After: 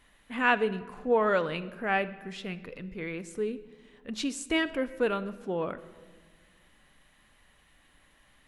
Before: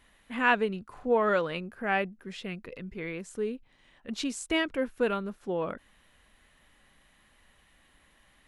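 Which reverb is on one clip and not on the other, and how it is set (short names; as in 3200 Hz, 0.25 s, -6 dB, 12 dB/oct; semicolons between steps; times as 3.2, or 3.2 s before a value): shoebox room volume 1500 m³, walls mixed, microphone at 0.4 m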